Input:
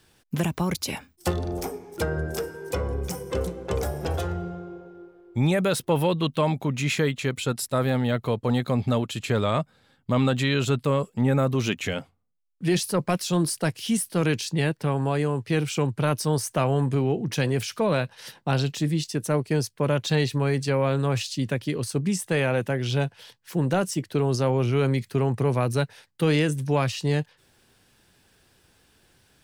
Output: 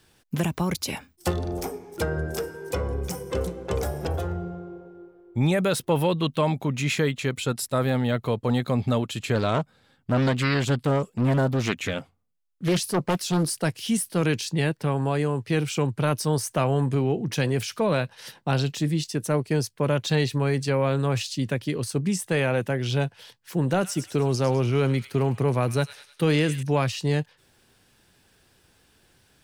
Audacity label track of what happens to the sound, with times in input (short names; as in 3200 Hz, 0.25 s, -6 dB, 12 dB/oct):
4.070000	5.410000	bell 4800 Hz -7.5 dB 3 oct
9.350000	13.490000	Doppler distortion depth 0.61 ms
23.550000	26.630000	thin delay 0.102 s, feedback 50%, high-pass 2100 Hz, level -9 dB